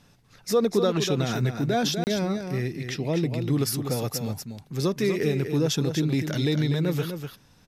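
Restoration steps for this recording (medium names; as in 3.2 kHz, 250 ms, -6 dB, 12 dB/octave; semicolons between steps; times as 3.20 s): interpolate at 2.04 s, 29 ms; expander -46 dBFS, range -21 dB; inverse comb 246 ms -7.5 dB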